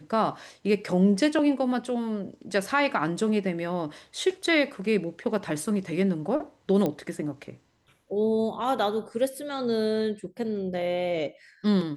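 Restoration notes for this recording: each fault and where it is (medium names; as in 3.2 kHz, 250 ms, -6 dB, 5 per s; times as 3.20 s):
6.86 s: pop -15 dBFS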